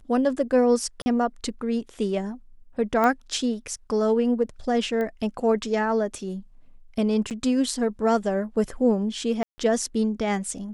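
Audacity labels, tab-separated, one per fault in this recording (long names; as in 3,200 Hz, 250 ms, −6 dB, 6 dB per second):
1.020000	1.060000	drop-out 40 ms
3.040000	3.040000	click −12 dBFS
5.010000	5.010000	click −19 dBFS
7.300000	7.310000	drop-out 8.4 ms
9.430000	9.580000	drop-out 150 ms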